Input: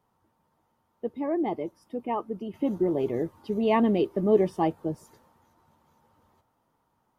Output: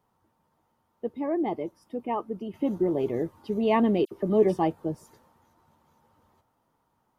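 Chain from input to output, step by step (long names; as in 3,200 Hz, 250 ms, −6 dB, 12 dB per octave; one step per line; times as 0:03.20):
0:04.05–0:04.59: all-pass dispersion lows, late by 63 ms, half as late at 2,400 Hz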